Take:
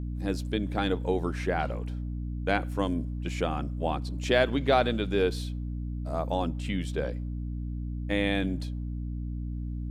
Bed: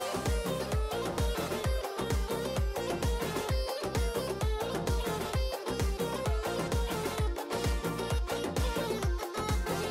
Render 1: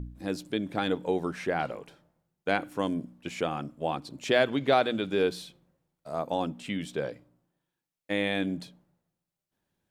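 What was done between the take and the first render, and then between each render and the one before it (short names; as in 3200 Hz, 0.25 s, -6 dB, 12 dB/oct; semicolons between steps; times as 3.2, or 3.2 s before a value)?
de-hum 60 Hz, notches 5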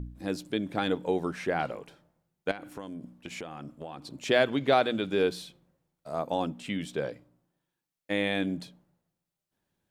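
2.51–4.16 compressor 10:1, threshold -35 dBFS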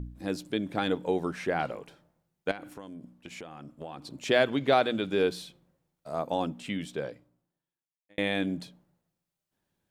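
2.74–3.78 gain -3.5 dB; 6.64–8.18 fade out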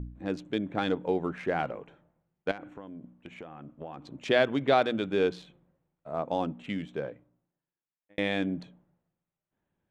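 Wiener smoothing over 9 samples; Bessel low-pass 5500 Hz, order 2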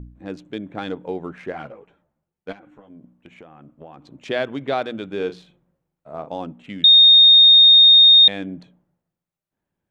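1.52–2.9 ensemble effect; 5.16–6.3 doubler 39 ms -10.5 dB; 6.84–8.28 bleep 3690 Hz -6.5 dBFS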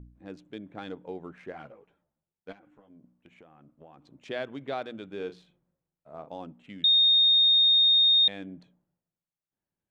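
gain -10.5 dB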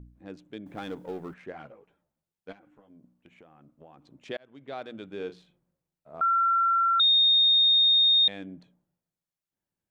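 0.66–1.34 G.711 law mismatch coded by mu; 4.37–5.01 fade in; 6.21–7 bleep 1360 Hz -20 dBFS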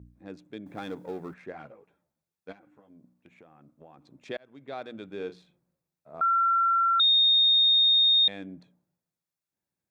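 HPF 63 Hz; notch 3000 Hz, Q 8.6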